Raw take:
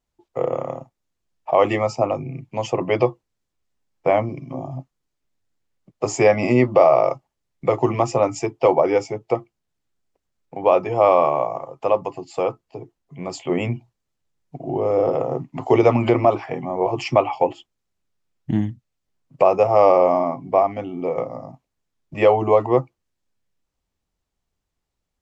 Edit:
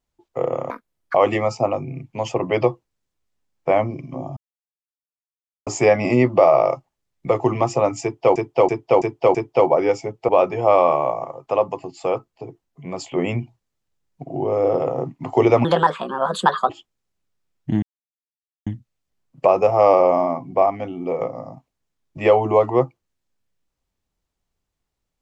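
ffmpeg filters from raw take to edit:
ffmpeg -i in.wav -filter_complex "[0:a]asplit=13[link_01][link_02][link_03][link_04][link_05][link_06][link_07][link_08][link_09][link_10][link_11][link_12][link_13];[link_01]atrim=end=0.704[link_14];[link_02]atrim=start=0.7:end=1.53,asetpts=PTS-STARTPTS,asetrate=82026,aresample=44100,atrim=end_sample=19679,asetpts=PTS-STARTPTS[link_15];[link_03]atrim=start=1.526:end=4.75,asetpts=PTS-STARTPTS,afade=type=out:start_time=3.22:duration=0.004:curve=hsin[link_16];[link_04]atrim=start=4.75:end=6.05,asetpts=PTS-STARTPTS,volume=0[link_17];[link_05]atrim=start=6.05:end=8.742,asetpts=PTS-STARTPTS,afade=type=in:duration=0.004:curve=hsin[link_18];[link_06]atrim=start=8.408:end=8.742[link_19];[link_07]atrim=start=8.408:end=8.742[link_20];[link_08]atrim=start=8.408:end=8.742[link_21];[link_09]atrim=start=8.408:end=9.352[link_22];[link_10]atrim=start=10.618:end=15.984[link_23];[link_11]atrim=start=15.98:end=17.5,asetpts=PTS-STARTPTS,asetrate=63945,aresample=44100[link_24];[link_12]atrim=start=17.496:end=18.63,asetpts=PTS-STARTPTS,afade=type=out:start_time=1.13:duration=0.004:curve=hsin,apad=pad_dur=0.84[link_25];[link_13]atrim=start=18.63,asetpts=PTS-STARTPTS,afade=type=in:duration=0.004:curve=hsin[link_26];[link_14][link_15]acrossfade=duration=0.004:curve1=hsin:curve2=hsin[link_27];[link_16][link_17][link_18]concat=n=3:v=0:a=1[link_28];[link_27][link_28]acrossfade=duration=0.004:curve1=hsin:curve2=hsin[link_29];[link_29][link_19]acrossfade=duration=0.004:curve1=hsin:curve2=hsin[link_30];[link_30][link_20]acrossfade=duration=0.004:curve1=hsin:curve2=hsin[link_31];[link_31][link_21]acrossfade=duration=0.004:curve1=hsin:curve2=hsin[link_32];[link_32][link_22]acrossfade=duration=0.004:curve1=hsin:curve2=hsin[link_33];[link_33][link_23]acrossfade=duration=0.004:curve1=hsin:curve2=hsin[link_34];[link_34][link_24]acrossfade=duration=0.004:curve1=hsin:curve2=hsin[link_35];[link_25][link_26]concat=n=2:v=0:a=1[link_36];[link_35][link_36]acrossfade=duration=0.004:curve1=hsin:curve2=hsin" out.wav

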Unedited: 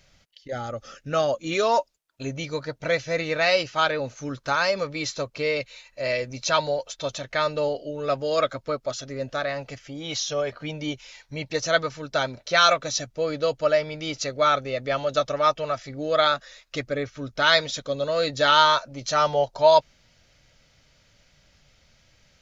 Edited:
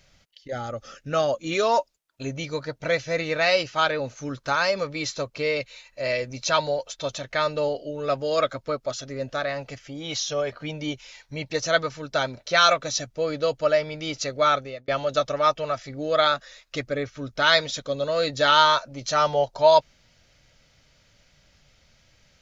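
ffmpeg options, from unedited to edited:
ffmpeg -i in.wav -filter_complex "[0:a]asplit=2[link_01][link_02];[link_01]atrim=end=14.88,asetpts=PTS-STARTPTS,afade=type=out:start_time=14.53:duration=0.35[link_03];[link_02]atrim=start=14.88,asetpts=PTS-STARTPTS,afade=type=in:duration=0.004:curve=hsin[link_04];[link_03][link_04]concat=n=2:v=0:a=1" out.wav

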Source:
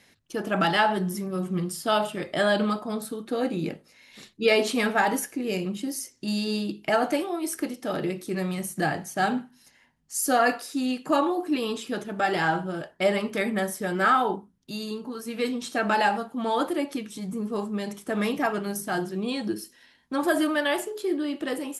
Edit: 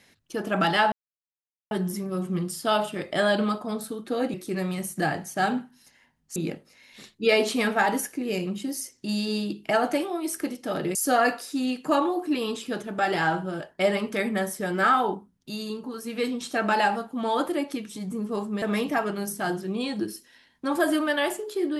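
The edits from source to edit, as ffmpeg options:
ffmpeg -i in.wav -filter_complex "[0:a]asplit=6[link_01][link_02][link_03][link_04][link_05][link_06];[link_01]atrim=end=0.92,asetpts=PTS-STARTPTS,afade=type=out:start_time=0.916:duration=0.004:curve=hsin,apad=pad_dur=0.79[link_07];[link_02]atrim=start=0.92:end=3.552,asetpts=PTS-STARTPTS,afade=type=in:duration=0.004:curve=hsin[link_08];[link_03]atrim=start=8.138:end=10.162[link_09];[link_04]atrim=start=3.548:end=8.142[link_10];[link_05]atrim=start=10.158:end=17.832[link_11];[link_06]atrim=start=18.098[link_12];[link_07][link_08]concat=n=2:v=0:a=1[link_13];[link_13][link_09]acrossfade=duration=0.004:curve1=hsin:curve2=hsin[link_14];[link_14][link_10]acrossfade=duration=0.004:curve1=hsin:curve2=hsin[link_15];[link_15][link_11]acrossfade=duration=0.004:curve1=hsin:curve2=hsin[link_16];[link_16][link_12]acrossfade=duration=0.004:curve1=hsin:curve2=hsin" out.wav

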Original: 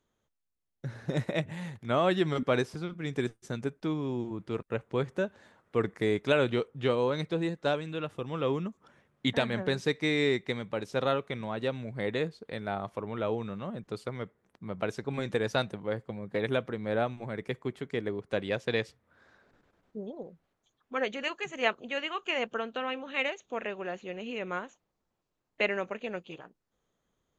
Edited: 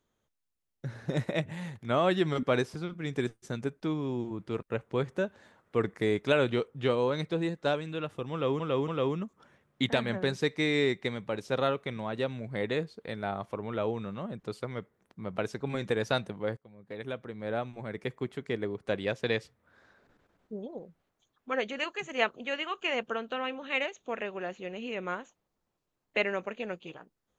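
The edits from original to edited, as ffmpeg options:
ffmpeg -i in.wav -filter_complex "[0:a]asplit=4[link_01][link_02][link_03][link_04];[link_01]atrim=end=8.602[link_05];[link_02]atrim=start=8.318:end=8.602[link_06];[link_03]atrim=start=8.318:end=16.01,asetpts=PTS-STARTPTS,afade=type=out:start_time=7.688:duration=0.004:curve=hsin:silence=0.1[link_07];[link_04]atrim=start=16.01,asetpts=PTS-STARTPTS,afade=type=in:duration=1.61:silence=0.1[link_08];[link_05][link_06]acrossfade=duration=0.004:curve1=hsin:curve2=hsin[link_09];[link_07][link_08]concat=n=2:v=0:a=1[link_10];[link_09][link_10]acrossfade=duration=0.004:curve1=hsin:curve2=hsin" out.wav

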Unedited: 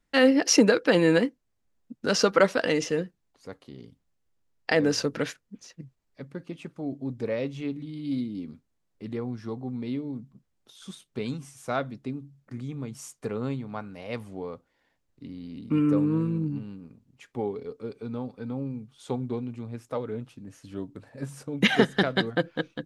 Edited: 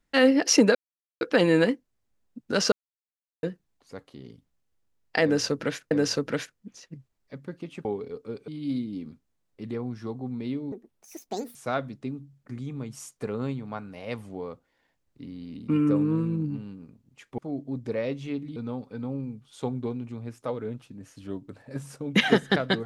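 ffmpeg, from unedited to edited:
ffmpeg -i in.wav -filter_complex "[0:a]asplit=11[link_01][link_02][link_03][link_04][link_05][link_06][link_07][link_08][link_09][link_10][link_11];[link_01]atrim=end=0.75,asetpts=PTS-STARTPTS,afade=type=out:start_time=0.746:duration=0.004:curve=hsin,apad=pad_dur=0.46[link_12];[link_02]atrim=start=0.75:end=2.26,asetpts=PTS-STARTPTS,afade=type=in:duration=0.004:curve=hsin,afade=type=out:start_time=1.506:duration=0.004:curve=hsin[link_13];[link_03]atrim=start=2.26:end=2.97,asetpts=PTS-STARTPTS,volume=0[link_14];[link_04]atrim=start=2.97:end=5.452,asetpts=PTS-STARTPTS,afade=type=in:duration=0.004:curve=hsin[link_15];[link_05]atrim=start=4.778:end=6.722[link_16];[link_06]atrim=start=17.398:end=18.032[link_17];[link_07]atrim=start=7.898:end=10.144[link_18];[link_08]atrim=start=10.14:end=11.57,asetpts=PTS-STARTPTS,asetrate=75852,aresample=44100[link_19];[link_09]atrim=start=11.566:end=17.402[link_20];[link_10]atrim=start=6.718:end=7.902[link_21];[link_11]atrim=start=18.028[link_22];[link_12][link_13][link_14][link_15]concat=n=4:v=0:a=1[link_23];[link_23][link_16]acrossfade=duration=0.004:curve1=hsin:curve2=hsin[link_24];[link_24][link_17]acrossfade=duration=0.004:curve1=hsin:curve2=hsin[link_25];[link_25][link_18]acrossfade=duration=0.004:curve1=hsin:curve2=hsin[link_26];[link_26][link_19]acrossfade=duration=0.004:curve1=hsin:curve2=hsin[link_27];[link_27][link_20]acrossfade=duration=0.004:curve1=hsin:curve2=hsin[link_28];[link_28][link_21]acrossfade=duration=0.004:curve1=hsin:curve2=hsin[link_29];[link_29][link_22]acrossfade=duration=0.004:curve1=hsin:curve2=hsin" out.wav

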